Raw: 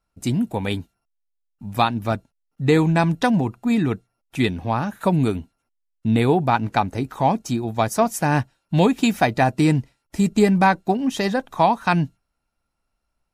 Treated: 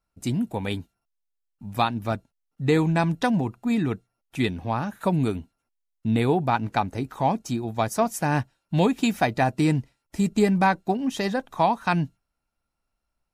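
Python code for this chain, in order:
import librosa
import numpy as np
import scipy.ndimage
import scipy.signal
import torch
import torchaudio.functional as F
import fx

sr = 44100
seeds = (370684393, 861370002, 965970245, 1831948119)

y = x * librosa.db_to_amplitude(-4.0)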